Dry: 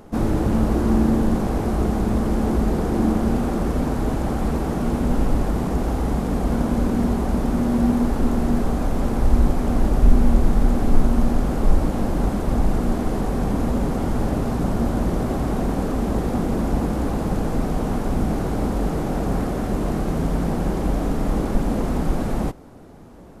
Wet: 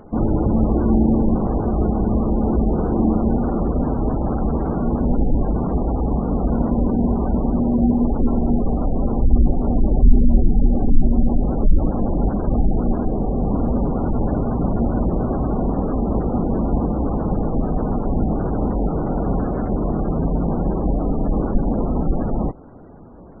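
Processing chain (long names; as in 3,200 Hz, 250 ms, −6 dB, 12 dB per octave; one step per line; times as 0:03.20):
gate on every frequency bin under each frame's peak −25 dB strong
0:13.05–0:13.48: flat-topped bell 1,600 Hz −8 dB
level +2 dB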